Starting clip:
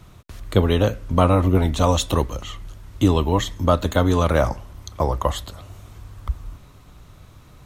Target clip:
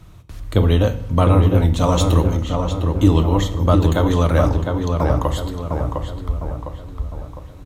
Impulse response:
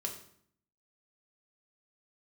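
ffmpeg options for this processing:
-filter_complex "[0:a]asplit=2[link_01][link_02];[link_02]adelay=706,lowpass=frequency=2300:poles=1,volume=-4dB,asplit=2[link_03][link_04];[link_04]adelay=706,lowpass=frequency=2300:poles=1,volume=0.49,asplit=2[link_05][link_06];[link_06]adelay=706,lowpass=frequency=2300:poles=1,volume=0.49,asplit=2[link_07][link_08];[link_08]adelay=706,lowpass=frequency=2300:poles=1,volume=0.49,asplit=2[link_09][link_10];[link_10]adelay=706,lowpass=frequency=2300:poles=1,volume=0.49,asplit=2[link_11][link_12];[link_12]adelay=706,lowpass=frequency=2300:poles=1,volume=0.49[link_13];[link_01][link_03][link_05][link_07][link_09][link_11][link_13]amix=inputs=7:normalize=0,asplit=2[link_14][link_15];[1:a]atrim=start_sample=2205,asetrate=35280,aresample=44100,lowshelf=frequency=230:gain=10[link_16];[link_15][link_16]afir=irnorm=-1:irlink=0,volume=-6dB[link_17];[link_14][link_17]amix=inputs=2:normalize=0,volume=-4.5dB"

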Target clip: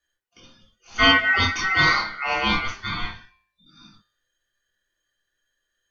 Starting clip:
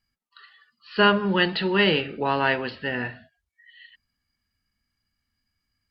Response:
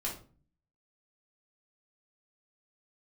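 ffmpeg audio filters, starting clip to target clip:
-filter_complex "[0:a]bandreject=frequency=108:width_type=h:width=4,bandreject=frequency=216:width_type=h:width=4,bandreject=frequency=324:width_type=h:width=4,bandreject=frequency=432:width_type=h:width=4,bandreject=frequency=540:width_type=h:width=4,bandreject=frequency=648:width_type=h:width=4,bandreject=frequency=756:width_type=h:width=4,bandreject=frequency=864:width_type=h:width=4,bandreject=frequency=972:width_type=h:width=4,bandreject=frequency=1080:width_type=h:width=4,bandreject=frequency=1188:width_type=h:width=4,bandreject=frequency=1296:width_type=h:width=4,bandreject=frequency=1404:width_type=h:width=4,bandreject=frequency=1512:width_type=h:width=4,bandreject=frequency=1620:width_type=h:width=4,bandreject=frequency=1728:width_type=h:width=4,bandreject=frequency=1836:width_type=h:width=4,bandreject=frequency=1944:width_type=h:width=4,bandreject=frequency=2052:width_type=h:width=4,bandreject=frequency=2160:width_type=h:width=4,bandreject=frequency=2268:width_type=h:width=4,bandreject=frequency=2376:width_type=h:width=4,bandreject=frequency=2484:width_type=h:width=4,bandreject=frequency=2592:width_type=h:width=4,bandreject=frequency=2700:width_type=h:width=4,bandreject=frequency=2808:width_type=h:width=4,bandreject=frequency=2916:width_type=h:width=4,bandreject=frequency=3024:width_type=h:width=4,bandreject=frequency=3132:width_type=h:width=4,bandreject=frequency=3240:width_type=h:width=4,bandreject=frequency=3348:width_type=h:width=4,aeval=exprs='val(0)*sin(2*PI*1700*n/s)':channel_layout=same[link_01];[1:a]atrim=start_sample=2205,atrim=end_sample=3087[link_02];[link_01][link_02]afir=irnorm=-1:irlink=0,volume=1.5dB"

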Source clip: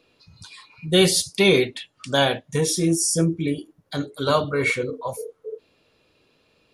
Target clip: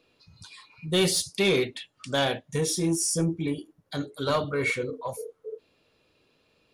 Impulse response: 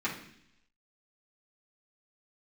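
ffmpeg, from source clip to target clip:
-af "asoftclip=type=tanh:threshold=-12dB,volume=-4dB"

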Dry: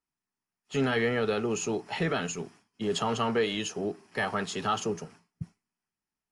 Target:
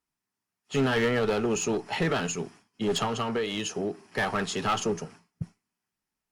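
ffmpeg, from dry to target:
ffmpeg -i in.wav -filter_complex "[0:a]asettb=1/sr,asplit=3[link_01][link_02][link_03];[link_01]atrim=end=3.054[link_04];[link_02]atrim=start=3.05:end=4.04,asetpts=PTS-STARTPTS,afade=type=in:duration=0.004:curve=qsin,afade=type=out:start_time=0.986:duration=0.004:curve=qsin,acompressor=threshold=-30dB:ratio=3[link_05];[link_03]atrim=start=4.036[link_06];[link_04][link_05]acrossfade=duration=0.004:curve1=hsin:curve2=qsin[link_07];[link_07][link_06]acrossfade=duration=0.004:curve1=qsin:curve2=hsin,aeval=exprs='clip(val(0),-1,0.0422)':channel_layout=same,volume=3.5dB" -ar 48000 -c:a libopus -b:a 256k out.opus

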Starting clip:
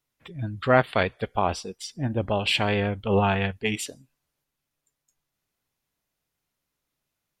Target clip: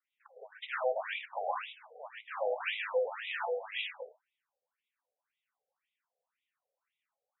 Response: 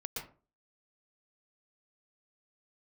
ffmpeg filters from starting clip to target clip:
-filter_complex "[0:a]aeval=exprs='(tanh(31.6*val(0)+0.7)-tanh(0.7))/31.6':channel_layout=same[link_01];[1:a]atrim=start_sample=2205,asetrate=48510,aresample=44100[link_02];[link_01][link_02]afir=irnorm=-1:irlink=0,afftfilt=real='re*between(b*sr/1024,550*pow(2800/550,0.5+0.5*sin(2*PI*1.9*pts/sr))/1.41,550*pow(2800/550,0.5+0.5*sin(2*PI*1.9*pts/sr))*1.41)':imag='im*between(b*sr/1024,550*pow(2800/550,0.5+0.5*sin(2*PI*1.9*pts/sr))/1.41,550*pow(2800/550,0.5+0.5*sin(2*PI*1.9*pts/sr))*1.41)':win_size=1024:overlap=0.75,volume=7dB"

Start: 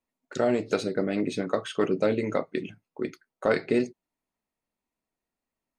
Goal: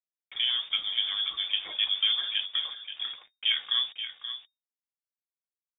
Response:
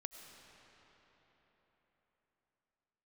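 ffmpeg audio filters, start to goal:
-filter_complex "[0:a]agate=range=-33dB:threshold=-47dB:ratio=3:detection=peak,acrossover=split=2000[link_01][link_02];[link_02]alimiter=level_in=9dB:limit=-24dB:level=0:latency=1:release=28,volume=-9dB[link_03];[link_01][link_03]amix=inputs=2:normalize=0,aeval=exprs='val(0)+0.00447*(sin(2*PI*60*n/s)+sin(2*PI*2*60*n/s)/2+sin(2*PI*3*60*n/s)/3+sin(2*PI*4*60*n/s)/4+sin(2*PI*5*60*n/s)/5)':channel_layout=same,acrusher=bits=6:mix=0:aa=0.000001,flanger=delay=3.1:depth=5.3:regen=46:speed=0.55:shape=sinusoidal,asplit=2[link_04][link_05];[link_05]aecho=0:1:529:0.316[link_06];[link_04][link_06]amix=inputs=2:normalize=0,lowpass=frequency=3100:width_type=q:width=0.5098,lowpass=frequency=3100:width_type=q:width=0.6013,lowpass=frequency=3100:width_type=q:width=0.9,lowpass=frequency=3100:width_type=q:width=2.563,afreqshift=-3700,volume=1dB"

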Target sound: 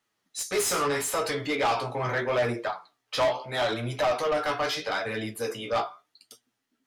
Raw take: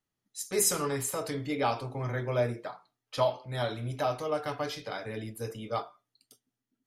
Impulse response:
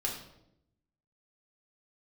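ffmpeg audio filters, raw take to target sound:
-filter_complex "[0:a]flanger=delay=8.4:depth=8.7:regen=28:speed=0.78:shape=sinusoidal,asplit=2[link_01][link_02];[link_02]highpass=frequency=720:poles=1,volume=23dB,asoftclip=type=tanh:threshold=-16.5dB[link_03];[link_01][link_03]amix=inputs=2:normalize=0,lowpass=frequency=4700:poles=1,volume=-6dB"

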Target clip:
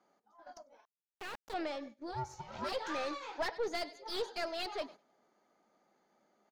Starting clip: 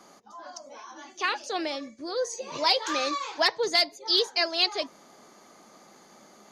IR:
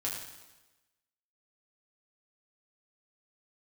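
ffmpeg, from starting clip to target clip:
-filter_complex "[0:a]bandreject=frequency=1100:width=6.6,aecho=1:1:99|198|297:0.0794|0.035|0.0154,aeval=exprs='(tanh(17.8*val(0)+0.5)-tanh(0.5))/17.8':channel_layout=same,agate=range=-13dB:threshold=-45dB:ratio=16:detection=peak,asettb=1/sr,asplit=3[link_01][link_02][link_03];[link_01]atrim=end=0.854[link_04];[link_02]atrim=start=0.85:end=1.54,asetpts=PTS-STARTPTS,afade=type=in:duration=0.004:curve=qsin,afade=type=out:start_time=0.686:duration=0.004:curve=qsin,acrusher=bits=3:dc=4:mix=0:aa=0.000001[link_05];[link_03]atrim=start=1.536[link_06];[link_04][link_05]acrossfade=duration=0.004:curve1=hsin:curve2=qsin[link_07];[link_07][link_06]acrossfade=duration=0.004:curve1=qsin:curve2=hsin,asplit=3[link_08][link_09][link_10];[link_08]afade=type=out:start_time=2.11:duration=0.02[link_11];[link_09]aeval=exprs='val(0)*sin(2*PI*380*n/s)':channel_layout=same,afade=type=in:start_time=2.11:duration=0.02,afade=type=out:start_time=2.71:duration=0.02[link_12];[link_10]afade=type=in:start_time=2.71:duration=0.02[link_13];[link_11][link_12][link_13]amix=inputs=3:normalize=0,asplit=2[link_14][link_15];[link_15]highpass=frequency=720:poles=1,volume=6dB,asoftclip=type=tanh:threshold=-21.5dB[link_16];[link_14][link_16]amix=inputs=2:normalize=0,lowpass=frequency=1000:poles=1,volume=-6dB,volume=-1.5dB"

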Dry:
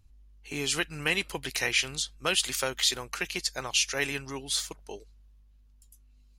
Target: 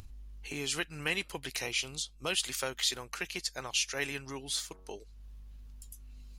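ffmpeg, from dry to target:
ffmpeg -i in.wav -filter_complex "[0:a]asettb=1/sr,asplit=3[link_01][link_02][link_03];[link_01]atrim=end=1.624[link_04];[link_02]atrim=start=1.62:end=2.3,asetpts=PTS-STARTPTS,afade=type=in:duration=0.004:curve=qsin,afade=type=out:start_time=0.676:duration=0.004:curve=qsin,equalizer=frequency=1700:width=3.3:gain=-14.5[link_05];[link_03]atrim=start=2.296[link_06];[link_04][link_05]acrossfade=duration=0.004:curve1=hsin:curve2=qsin[link_07];[link_07][link_06]acrossfade=duration=0.004:curve1=qsin:curve2=hsin,asettb=1/sr,asplit=3[link_08][link_09][link_10];[link_08]atrim=end=4.464[link_11];[link_09]atrim=start=4.46:end=4.95,asetpts=PTS-STARTPTS,afade=type=in:duration=0.004:curve=qsin,afade=type=out:start_time=0.486:duration=0.004:curve=qsin,bandreject=frequency=93.01:width_type=h:width=4,bandreject=frequency=186.02:width_type=h:width=4,bandreject=frequency=279.03:width_type=h:width=4,bandreject=frequency=372.04:width_type=h:width=4,bandreject=frequency=465.05:width_type=h:width=4,bandreject=frequency=558.06:width_type=h:width=4,bandreject=frequency=651.07:width_type=h:width=4,bandreject=frequency=744.08:width_type=h:width=4,bandreject=frequency=837.09:width_type=h:width=4,bandreject=frequency=930.1:width_type=h:width=4,bandreject=frequency=1023.11:width_type=h:width=4,bandreject=frequency=1116.12:width_type=h:width=4,bandreject=frequency=1209.13:width_type=h:width=4,bandreject=frequency=1302.14:width_type=h:width=4,bandreject=frequency=1395.15:width_type=h:width=4,bandreject=frequency=1488.16:width_type=h:width=4,bandreject=frequency=1581.17:width_type=h:width=4,bandreject=frequency=1674.18:width_type=h:width=4[link_12];[link_10]atrim=start=4.946[link_13];[link_11][link_12]acrossfade=duration=0.004:curve1=hsin:curve2=qsin[link_14];[link_14][link_13]acrossfade=duration=0.004:curve1=qsin:curve2=hsin,acompressor=mode=upward:threshold=-31dB:ratio=2.5,volume=-5dB" out.wav

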